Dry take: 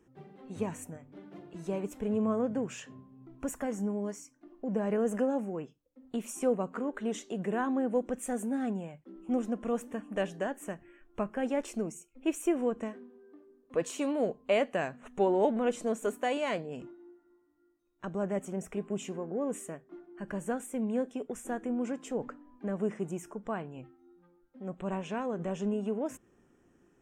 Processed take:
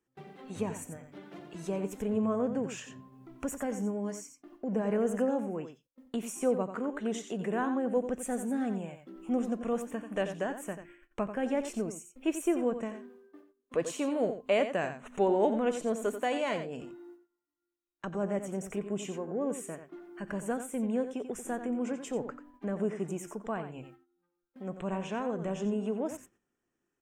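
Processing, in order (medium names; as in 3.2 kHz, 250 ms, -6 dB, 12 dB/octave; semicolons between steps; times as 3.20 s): gate -55 dBFS, range -21 dB; delay 89 ms -10 dB; tape noise reduction on one side only encoder only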